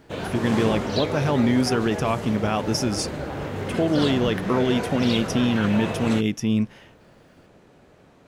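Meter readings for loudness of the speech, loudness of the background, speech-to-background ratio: −23.5 LKFS, −29.0 LKFS, 5.5 dB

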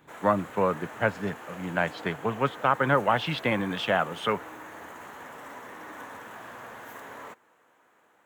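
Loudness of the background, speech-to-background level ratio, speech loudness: −42.5 LKFS, 15.0 dB, −27.5 LKFS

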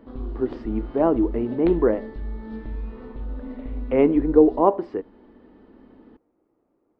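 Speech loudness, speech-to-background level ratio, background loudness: −21.5 LKFS, 13.5 dB, −35.0 LKFS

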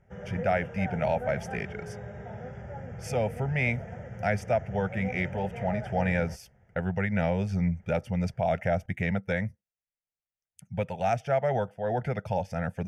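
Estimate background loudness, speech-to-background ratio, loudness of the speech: −39.5 LKFS, 9.5 dB, −30.0 LKFS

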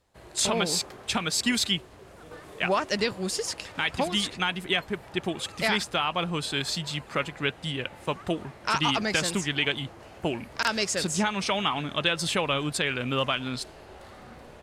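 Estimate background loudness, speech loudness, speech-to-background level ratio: −47.5 LKFS, −27.5 LKFS, 20.0 dB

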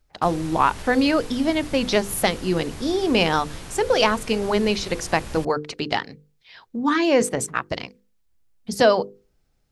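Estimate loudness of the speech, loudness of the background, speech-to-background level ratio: −22.0 LKFS, −38.5 LKFS, 16.5 dB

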